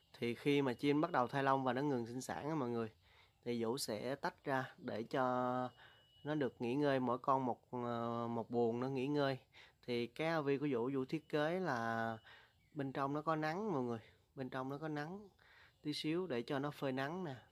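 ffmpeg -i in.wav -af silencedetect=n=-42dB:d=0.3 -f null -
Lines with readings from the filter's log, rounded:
silence_start: 2.87
silence_end: 3.46 | silence_duration: 0.59
silence_start: 5.67
silence_end: 6.26 | silence_duration: 0.58
silence_start: 9.35
silence_end: 9.89 | silence_duration: 0.53
silence_start: 12.16
silence_end: 12.77 | silence_duration: 0.62
silence_start: 13.97
silence_end: 14.38 | silence_duration: 0.41
silence_start: 15.16
silence_end: 15.86 | silence_duration: 0.70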